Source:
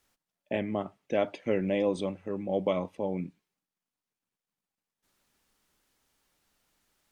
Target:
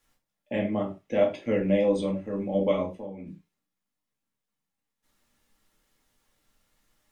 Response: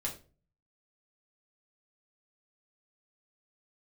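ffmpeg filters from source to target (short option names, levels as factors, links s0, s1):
-filter_complex "[0:a]asplit=3[s0][s1][s2];[s0]afade=t=out:st=2.85:d=0.02[s3];[s1]acompressor=threshold=0.00794:ratio=2.5,afade=t=in:st=2.85:d=0.02,afade=t=out:st=3.25:d=0.02[s4];[s2]afade=t=in:st=3.25:d=0.02[s5];[s3][s4][s5]amix=inputs=3:normalize=0[s6];[1:a]atrim=start_sample=2205,afade=t=out:st=0.17:d=0.01,atrim=end_sample=7938[s7];[s6][s7]afir=irnorm=-1:irlink=0"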